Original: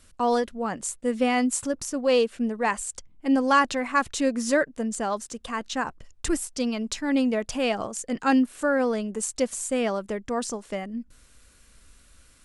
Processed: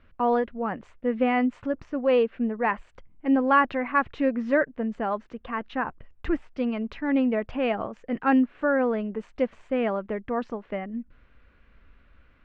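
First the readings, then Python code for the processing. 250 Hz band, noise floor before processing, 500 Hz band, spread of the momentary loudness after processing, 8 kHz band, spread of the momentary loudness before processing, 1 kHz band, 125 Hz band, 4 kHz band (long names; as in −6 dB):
0.0 dB, −57 dBFS, 0.0 dB, 11 LU, below −35 dB, 10 LU, 0.0 dB, can't be measured, −10.0 dB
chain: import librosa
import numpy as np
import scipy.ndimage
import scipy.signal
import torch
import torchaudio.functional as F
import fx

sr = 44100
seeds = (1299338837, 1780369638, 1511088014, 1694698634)

y = scipy.signal.sosfilt(scipy.signal.butter(4, 2500.0, 'lowpass', fs=sr, output='sos'), x)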